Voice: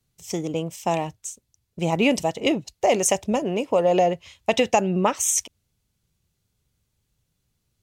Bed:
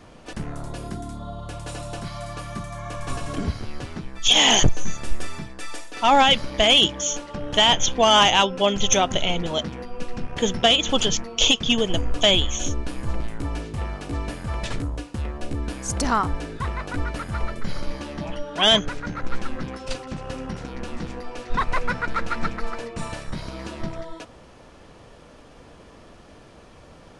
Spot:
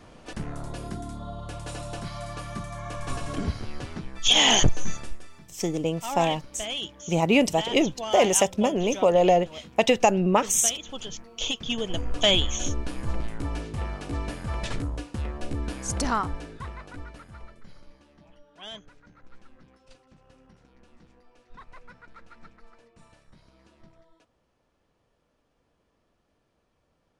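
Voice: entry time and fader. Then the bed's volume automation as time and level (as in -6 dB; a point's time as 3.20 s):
5.30 s, 0.0 dB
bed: 4.96 s -2.5 dB
5.23 s -16.5 dB
10.99 s -16.5 dB
12.32 s -2.5 dB
15.97 s -2.5 dB
18.02 s -24.5 dB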